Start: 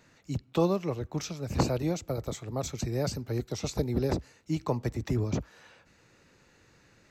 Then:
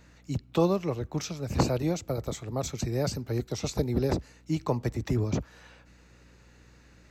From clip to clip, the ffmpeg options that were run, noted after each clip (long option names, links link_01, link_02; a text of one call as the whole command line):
ffmpeg -i in.wav -af "aeval=exprs='val(0)+0.00126*(sin(2*PI*60*n/s)+sin(2*PI*2*60*n/s)/2+sin(2*PI*3*60*n/s)/3+sin(2*PI*4*60*n/s)/4+sin(2*PI*5*60*n/s)/5)':channel_layout=same,volume=1.5dB" out.wav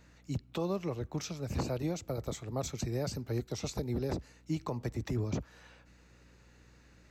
ffmpeg -i in.wav -af "alimiter=limit=-20dB:level=0:latency=1:release=122,volume=-4dB" out.wav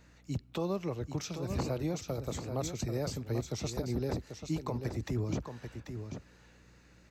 ffmpeg -i in.wav -af "aecho=1:1:789:0.398" out.wav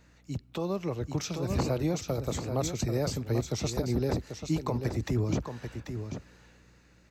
ffmpeg -i in.wav -af "dynaudnorm=framelen=100:gausssize=17:maxgain=5dB" out.wav